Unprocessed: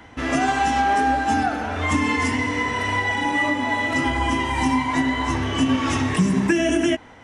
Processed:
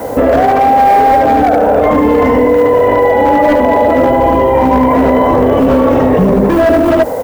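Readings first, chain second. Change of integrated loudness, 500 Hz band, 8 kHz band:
+12.0 dB, +21.0 dB, n/a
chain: octaver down 2 oct, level -3 dB; synth low-pass 530 Hz, resonance Q 5; tilt +4 dB/oct; hard clip -20 dBFS, distortion -15 dB; echo 74 ms -5 dB; negative-ratio compressor -26 dBFS, ratio -1; bell 350 Hz -7.5 dB 0.25 oct; added noise blue -63 dBFS; maximiser +27.5 dB; gain -1 dB

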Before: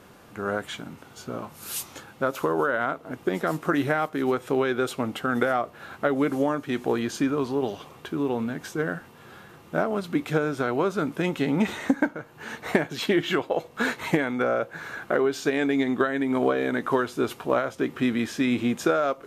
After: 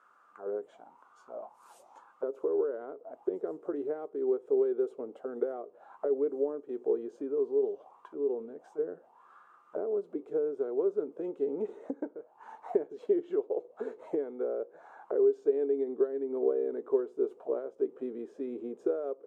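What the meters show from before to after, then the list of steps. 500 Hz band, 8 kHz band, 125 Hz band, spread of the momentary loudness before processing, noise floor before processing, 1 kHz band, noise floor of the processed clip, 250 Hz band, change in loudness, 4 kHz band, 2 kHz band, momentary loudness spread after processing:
-3.0 dB, under -30 dB, under -25 dB, 10 LU, -50 dBFS, -18.5 dB, -62 dBFS, -12.5 dB, -6.5 dB, under -30 dB, under -25 dB, 13 LU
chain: auto-wah 420–1400 Hz, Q 6.7, down, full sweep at -25 dBFS; graphic EQ 125/2000/4000/8000 Hz -11/-6/-4/+9 dB; gain +2 dB

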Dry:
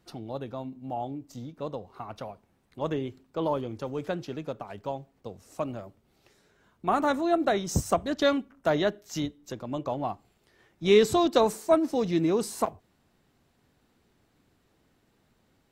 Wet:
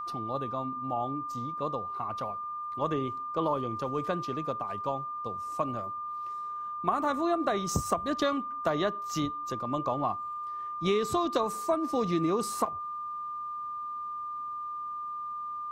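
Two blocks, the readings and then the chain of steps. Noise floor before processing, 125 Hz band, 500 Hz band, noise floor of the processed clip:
-69 dBFS, -2.0 dB, -5.0 dB, -37 dBFS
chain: bell 1100 Hz +9.5 dB 0.26 oct; compressor 10:1, threshold -24 dBFS, peak gain reduction 10.5 dB; whine 1200 Hz -34 dBFS

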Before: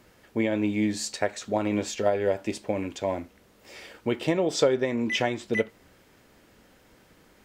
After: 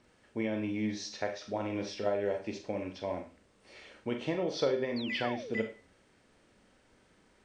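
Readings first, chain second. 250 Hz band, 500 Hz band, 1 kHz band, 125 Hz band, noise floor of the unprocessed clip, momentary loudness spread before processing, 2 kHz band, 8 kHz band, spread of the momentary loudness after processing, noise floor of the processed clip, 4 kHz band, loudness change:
-7.5 dB, -7.0 dB, -7.0 dB, -7.5 dB, -59 dBFS, 11 LU, -7.5 dB, -13.0 dB, 10 LU, -66 dBFS, -6.5 dB, -7.5 dB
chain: nonlinear frequency compression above 3300 Hz 1.5:1; Schroeder reverb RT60 0.35 s, combs from 29 ms, DRR 5 dB; painted sound fall, 4.96–5.54, 340–4800 Hz -35 dBFS; gain -8.5 dB

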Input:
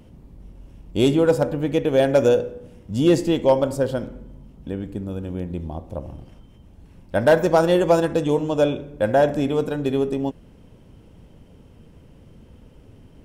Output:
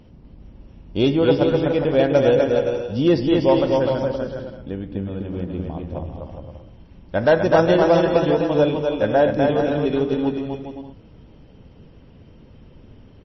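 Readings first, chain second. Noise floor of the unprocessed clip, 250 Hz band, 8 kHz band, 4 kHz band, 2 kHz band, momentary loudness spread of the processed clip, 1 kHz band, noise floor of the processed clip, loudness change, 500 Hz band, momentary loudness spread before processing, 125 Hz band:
-49 dBFS, +2.0 dB, n/a, +2.0 dB, +2.0 dB, 16 LU, +2.0 dB, -48 dBFS, +1.5 dB, +1.5 dB, 14 LU, +1.5 dB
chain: bouncing-ball echo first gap 0.25 s, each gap 0.65×, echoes 5; MP3 24 kbps 22050 Hz

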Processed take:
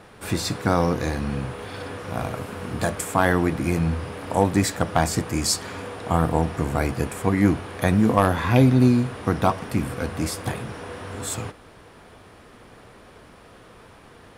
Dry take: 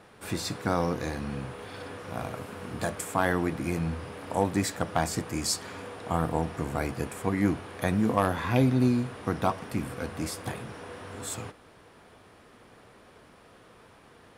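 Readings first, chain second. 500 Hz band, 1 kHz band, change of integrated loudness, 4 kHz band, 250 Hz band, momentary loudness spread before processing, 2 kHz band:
+6.0 dB, +6.0 dB, +7.0 dB, +6.0 dB, +6.5 dB, 14 LU, +6.0 dB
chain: low shelf 70 Hz +8 dB; gain +6 dB

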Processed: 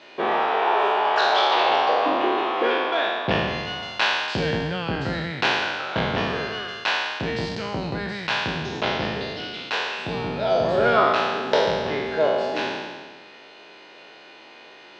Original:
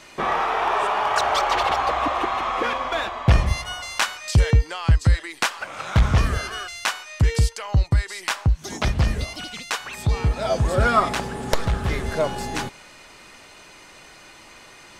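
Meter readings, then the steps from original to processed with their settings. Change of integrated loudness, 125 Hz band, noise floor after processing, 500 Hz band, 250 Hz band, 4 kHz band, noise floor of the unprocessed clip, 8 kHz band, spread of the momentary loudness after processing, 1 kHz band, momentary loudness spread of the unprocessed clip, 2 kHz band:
0.0 dB, -11.5 dB, -46 dBFS, +5.0 dB, +1.0 dB, +3.5 dB, -47 dBFS, -12.0 dB, 10 LU, +1.0 dB, 9 LU, +2.5 dB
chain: spectral trails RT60 1.59 s; speaker cabinet 290–4000 Hz, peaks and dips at 410 Hz +4 dB, 1200 Hz -8 dB, 2100 Hz -5 dB

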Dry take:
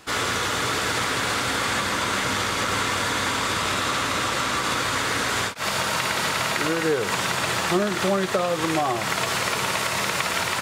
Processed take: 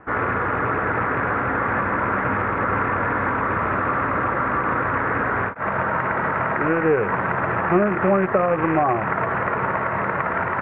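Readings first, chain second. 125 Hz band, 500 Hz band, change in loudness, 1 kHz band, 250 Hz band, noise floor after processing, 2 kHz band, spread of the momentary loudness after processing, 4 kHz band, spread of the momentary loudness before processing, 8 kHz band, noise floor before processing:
+5.0 dB, +4.5 dB, +1.5 dB, +4.5 dB, +4.5 dB, -25 dBFS, +1.5 dB, 4 LU, under -25 dB, 1 LU, under -40 dB, -27 dBFS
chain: rattling part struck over -32 dBFS, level -16 dBFS; steep low-pass 1800 Hz 36 dB/oct; gain +4.5 dB

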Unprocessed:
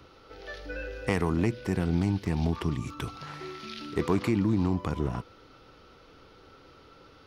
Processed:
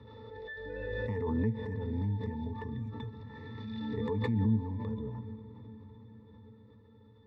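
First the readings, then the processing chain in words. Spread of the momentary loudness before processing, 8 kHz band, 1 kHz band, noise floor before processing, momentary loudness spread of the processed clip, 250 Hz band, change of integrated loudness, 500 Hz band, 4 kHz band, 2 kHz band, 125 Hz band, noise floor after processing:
14 LU, under -25 dB, -8.0 dB, -55 dBFS, 20 LU, -6.0 dB, -5.5 dB, -5.0 dB, -9.5 dB, -6.5 dB, -3.5 dB, -58 dBFS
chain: octave resonator A, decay 0.13 s; diffused feedback echo 0.461 s, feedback 63%, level -14 dB; backwards sustainer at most 21 dB/s

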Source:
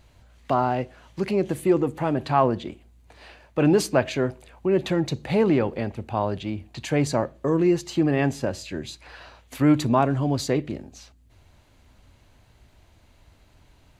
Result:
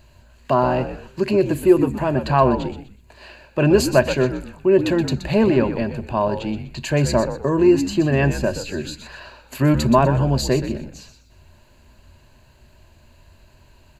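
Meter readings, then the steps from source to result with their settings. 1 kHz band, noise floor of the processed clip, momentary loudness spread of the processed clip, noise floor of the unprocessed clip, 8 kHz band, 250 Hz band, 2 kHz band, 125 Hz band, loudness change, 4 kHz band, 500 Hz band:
+3.5 dB, -52 dBFS, 14 LU, -58 dBFS, +4.5 dB, +4.0 dB, +5.5 dB, +5.5 dB, +4.5 dB, +5.0 dB, +5.5 dB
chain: ripple EQ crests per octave 1.4, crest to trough 9 dB; frequency-shifting echo 0.124 s, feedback 31%, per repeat -77 Hz, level -10 dB; gain +3 dB

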